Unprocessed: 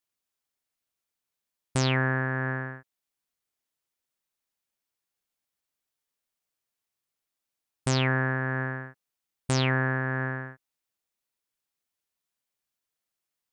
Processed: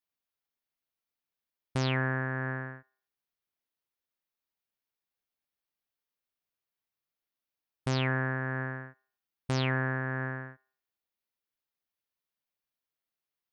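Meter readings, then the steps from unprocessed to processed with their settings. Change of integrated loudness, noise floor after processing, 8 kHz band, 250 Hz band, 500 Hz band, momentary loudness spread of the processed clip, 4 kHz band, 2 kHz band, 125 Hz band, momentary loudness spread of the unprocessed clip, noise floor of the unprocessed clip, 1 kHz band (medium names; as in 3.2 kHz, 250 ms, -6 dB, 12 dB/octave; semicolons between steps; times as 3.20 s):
-4.5 dB, under -85 dBFS, -12.0 dB, -4.0 dB, -4.0 dB, 14 LU, -5.5 dB, -4.5 dB, -4.0 dB, 14 LU, under -85 dBFS, -4.0 dB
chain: peaking EQ 7.9 kHz -14.5 dB 0.6 oct; on a send: feedback echo behind a band-pass 89 ms, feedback 31%, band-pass 1.1 kHz, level -23.5 dB; on the sum: trim -4 dB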